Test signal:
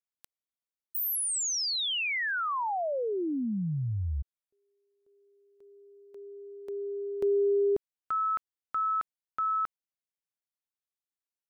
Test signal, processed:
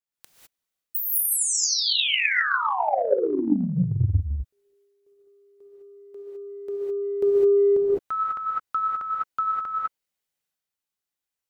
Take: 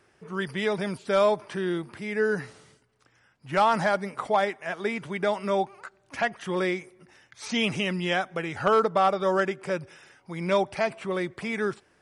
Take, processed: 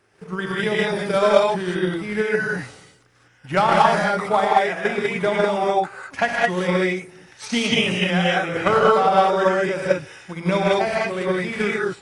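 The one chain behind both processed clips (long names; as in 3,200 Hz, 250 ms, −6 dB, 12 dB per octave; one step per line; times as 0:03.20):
reverb whose tail is shaped and stops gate 230 ms rising, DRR −6 dB
transient designer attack +8 dB, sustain +4 dB
level −1 dB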